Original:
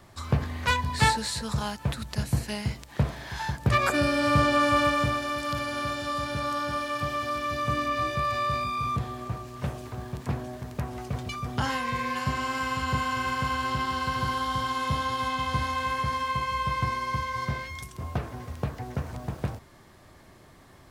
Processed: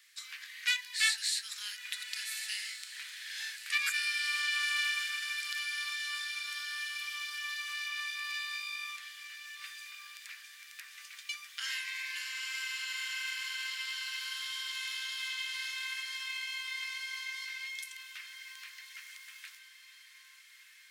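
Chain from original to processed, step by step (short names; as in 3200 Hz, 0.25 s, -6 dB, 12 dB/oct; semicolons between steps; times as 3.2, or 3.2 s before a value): steep high-pass 1800 Hz 36 dB/oct; on a send: diffused feedback echo 1.343 s, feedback 41%, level -10.5 dB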